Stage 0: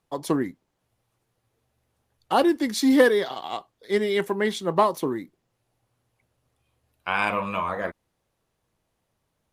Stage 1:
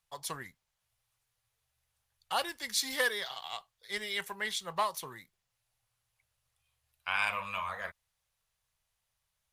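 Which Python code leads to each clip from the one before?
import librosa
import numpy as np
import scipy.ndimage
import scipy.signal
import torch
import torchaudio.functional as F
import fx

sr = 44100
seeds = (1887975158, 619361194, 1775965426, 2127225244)

y = fx.tone_stack(x, sr, knobs='10-0-10')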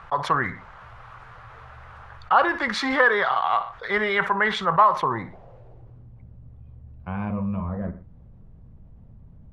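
y = fx.filter_sweep_lowpass(x, sr, from_hz=1300.0, to_hz=240.0, start_s=4.91, end_s=6.11, q=2.6)
y = fx.echo_feedback(y, sr, ms=61, feedback_pct=24, wet_db=-20.0)
y = fx.env_flatten(y, sr, amount_pct=50)
y = F.gain(torch.from_numpy(y), 8.0).numpy()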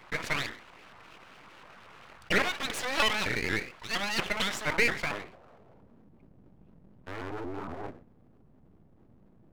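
y = np.abs(x)
y = fx.low_shelf(y, sr, hz=120.0, db=-11.5)
y = fx.vibrato_shape(y, sr, shape='saw_up', rate_hz=4.3, depth_cents=250.0)
y = F.gain(torch.from_numpy(y), -3.5).numpy()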